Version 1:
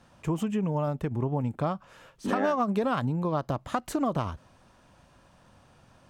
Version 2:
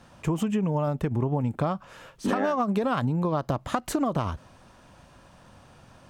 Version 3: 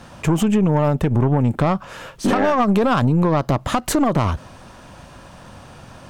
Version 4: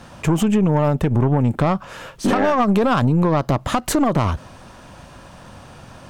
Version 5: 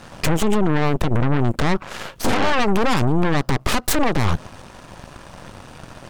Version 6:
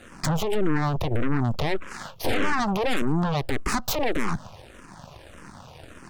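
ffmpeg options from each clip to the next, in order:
-af "acompressor=threshold=-27dB:ratio=6,volume=5.5dB"
-filter_complex "[0:a]asplit=2[a][b];[b]alimiter=limit=-21.5dB:level=0:latency=1:release=28,volume=-1dB[c];[a][c]amix=inputs=2:normalize=0,aeval=exprs='(tanh(7.08*val(0)+0.35)-tanh(0.35))/7.08':c=same,volume=7dB"
-af anull
-af "acompressor=threshold=-20dB:ratio=10,aeval=exprs='0.282*(cos(1*acos(clip(val(0)/0.282,-1,1)))-cos(1*PI/2))+0.112*(cos(8*acos(clip(val(0)/0.282,-1,1)))-cos(8*PI/2))':c=same"
-filter_complex "[0:a]asplit=2[a][b];[b]afreqshift=-1.7[c];[a][c]amix=inputs=2:normalize=1,volume=-2.5dB"

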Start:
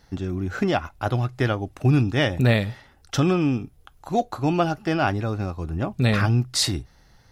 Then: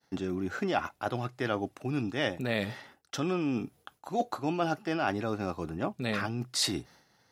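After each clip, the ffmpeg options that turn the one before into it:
-af "areverse,acompressor=threshold=-27dB:ratio=6,areverse,highpass=200,agate=range=-33dB:threshold=-53dB:ratio=3:detection=peak,volume=1.5dB"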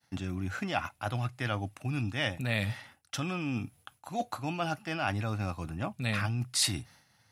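-af "equalizer=f=100:t=o:w=0.67:g=11,equalizer=f=400:t=o:w=0.67:g=-11,equalizer=f=2.5k:t=o:w=0.67:g=5,equalizer=f=10k:t=o:w=0.67:g=9,volume=-1.5dB"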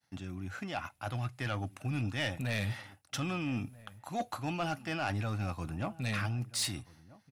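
-filter_complex "[0:a]dynaudnorm=f=200:g=11:m=6dB,asoftclip=type=tanh:threshold=-19.5dB,asplit=2[a][b];[b]adelay=1283,volume=-20dB,highshelf=f=4k:g=-28.9[c];[a][c]amix=inputs=2:normalize=0,volume=-6dB"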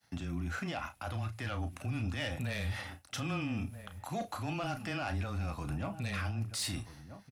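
-filter_complex "[0:a]alimiter=level_in=12dB:limit=-24dB:level=0:latency=1:release=97,volume=-12dB,afreqshift=-14,asplit=2[a][b];[b]adelay=35,volume=-10dB[c];[a][c]amix=inputs=2:normalize=0,volume=6.5dB"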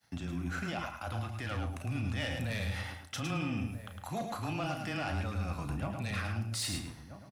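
-af "aecho=1:1:107|214|321:0.531|0.0903|0.0153"

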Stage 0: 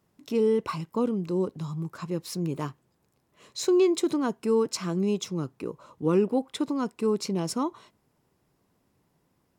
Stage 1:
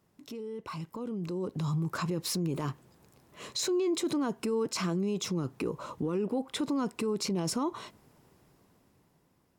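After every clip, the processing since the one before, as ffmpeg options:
-af "acompressor=threshold=-31dB:ratio=6,alimiter=level_in=9.5dB:limit=-24dB:level=0:latency=1:release=16,volume=-9.5dB,dynaudnorm=f=400:g=7:m=10dB"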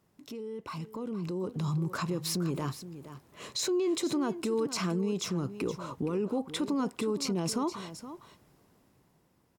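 -af "aecho=1:1:469:0.224"

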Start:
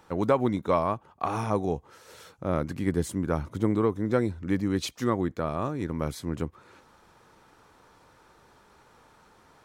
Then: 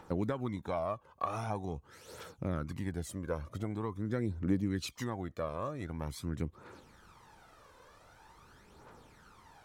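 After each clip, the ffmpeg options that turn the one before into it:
-af "acompressor=threshold=-36dB:ratio=2,aphaser=in_gain=1:out_gain=1:delay=2:decay=0.57:speed=0.45:type=triangular,volume=-2.5dB"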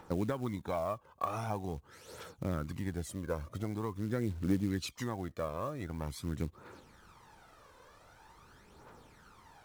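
-af "acrusher=bits=6:mode=log:mix=0:aa=0.000001"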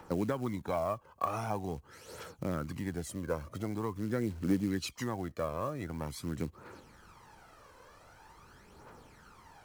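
-filter_complex "[0:a]bandreject=f=3.6k:w=12,acrossover=split=130|1500|3200[a][b][c][d];[a]alimiter=level_in=21dB:limit=-24dB:level=0:latency=1,volume=-21dB[e];[e][b][c][d]amix=inputs=4:normalize=0,volume=2dB"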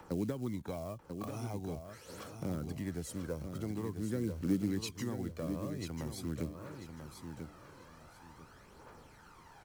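-filter_complex "[0:a]acrossover=split=480|3000[a][b][c];[b]acompressor=threshold=-49dB:ratio=6[d];[a][d][c]amix=inputs=3:normalize=0,aecho=1:1:991|1982|2973:0.422|0.105|0.0264,volume=-1.5dB"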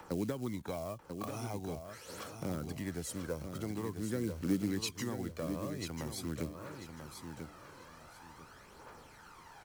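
-af "lowshelf=f=450:g=-6,volume=4dB"

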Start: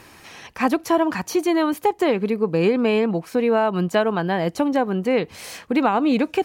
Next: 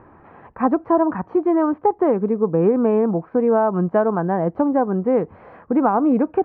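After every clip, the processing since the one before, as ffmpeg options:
-af "lowpass=f=1.3k:w=0.5412,lowpass=f=1.3k:w=1.3066,volume=2dB"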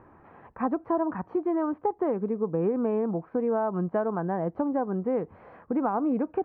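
-af "acompressor=threshold=-21dB:ratio=1.5,volume=-6.5dB"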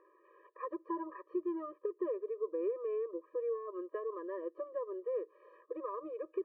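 -af "afftfilt=real='re*eq(mod(floor(b*sr/1024/320),2),1)':imag='im*eq(mod(floor(b*sr/1024/320),2),1)':win_size=1024:overlap=0.75,volume=-7.5dB"

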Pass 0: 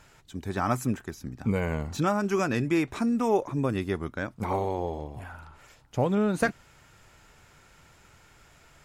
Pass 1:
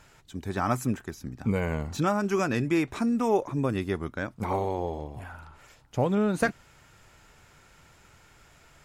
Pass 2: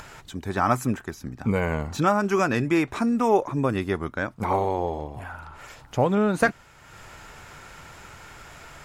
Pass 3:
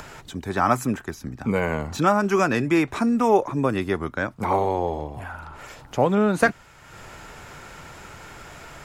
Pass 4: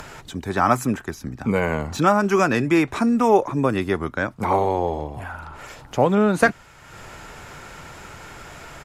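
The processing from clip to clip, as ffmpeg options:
-af anull
-af "acompressor=mode=upward:threshold=-39dB:ratio=2.5,equalizer=f=1.1k:t=o:w=2.2:g=4.5,volume=2dB"
-filter_complex "[0:a]acrossover=split=150|690|4500[a][b][c][d];[a]alimiter=level_in=9.5dB:limit=-24dB:level=0:latency=1,volume=-9.5dB[e];[b]acompressor=mode=upward:threshold=-45dB:ratio=2.5[f];[e][f][c][d]amix=inputs=4:normalize=0,volume=2dB"
-af "aresample=32000,aresample=44100,volume=2dB"

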